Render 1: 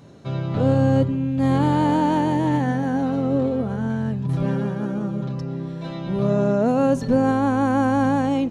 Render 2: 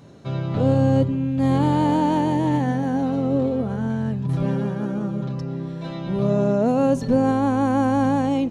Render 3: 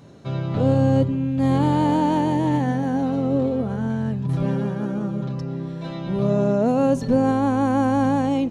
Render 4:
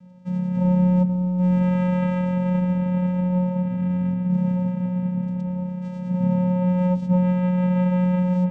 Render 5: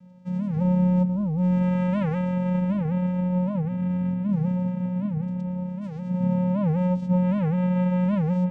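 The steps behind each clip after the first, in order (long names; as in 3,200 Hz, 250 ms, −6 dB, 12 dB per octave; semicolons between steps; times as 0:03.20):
dynamic equaliser 1,500 Hz, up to −4 dB, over −39 dBFS, Q 2
no processing that can be heard
delay with a band-pass on its return 1,011 ms, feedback 54%, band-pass 600 Hz, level −9.5 dB; channel vocoder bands 4, square 181 Hz
wow of a warped record 78 rpm, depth 250 cents; level −2.5 dB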